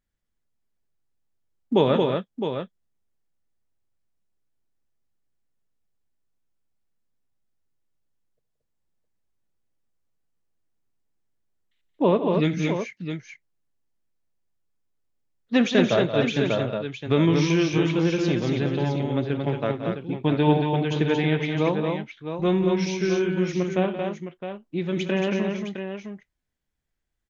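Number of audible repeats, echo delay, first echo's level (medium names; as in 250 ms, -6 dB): 4, 66 ms, -18.5 dB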